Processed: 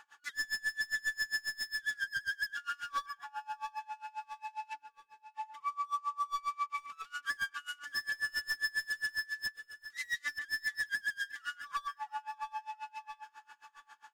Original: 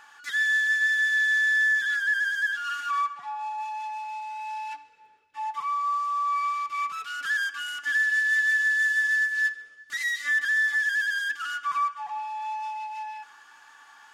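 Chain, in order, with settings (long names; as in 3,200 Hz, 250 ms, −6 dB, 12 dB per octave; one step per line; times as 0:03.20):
0:01.67–0:02.16: high-pass filter 940 Hz 12 dB per octave
wave folding −23.5 dBFS
on a send: repeating echo 666 ms, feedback 44%, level −13.5 dB
on the sum: tremolo with a sine in dB 7.4 Hz, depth 28 dB
level −3 dB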